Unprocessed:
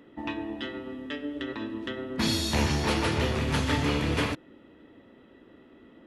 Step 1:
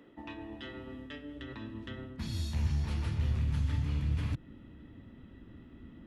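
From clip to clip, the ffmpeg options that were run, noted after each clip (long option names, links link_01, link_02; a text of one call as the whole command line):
ffmpeg -i in.wav -filter_complex "[0:a]areverse,acompressor=threshold=-36dB:ratio=6,areverse,asubboost=boost=11.5:cutoff=140,acrossover=split=130[link_01][link_02];[link_02]acompressor=threshold=-34dB:ratio=6[link_03];[link_01][link_03]amix=inputs=2:normalize=0,volume=-3.5dB" out.wav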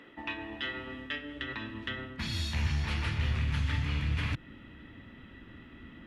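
ffmpeg -i in.wav -af "equalizer=frequency=2200:width=0.53:gain=13" out.wav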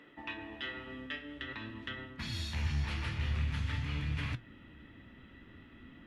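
ffmpeg -i in.wav -af "flanger=delay=6.6:depth=8.9:regen=75:speed=0.49:shape=sinusoidal" out.wav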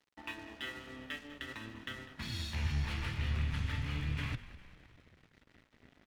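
ffmpeg -i in.wav -filter_complex "[0:a]aeval=exprs='sgn(val(0))*max(abs(val(0))-0.00251,0)':channel_layout=same,asplit=6[link_01][link_02][link_03][link_04][link_05][link_06];[link_02]adelay=200,afreqshift=-47,volume=-16dB[link_07];[link_03]adelay=400,afreqshift=-94,volume=-20.9dB[link_08];[link_04]adelay=600,afreqshift=-141,volume=-25.8dB[link_09];[link_05]adelay=800,afreqshift=-188,volume=-30.6dB[link_10];[link_06]adelay=1000,afreqshift=-235,volume=-35.5dB[link_11];[link_01][link_07][link_08][link_09][link_10][link_11]amix=inputs=6:normalize=0" out.wav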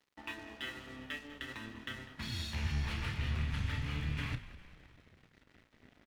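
ffmpeg -i in.wav -filter_complex "[0:a]asplit=2[link_01][link_02];[link_02]adelay=32,volume=-11dB[link_03];[link_01][link_03]amix=inputs=2:normalize=0" out.wav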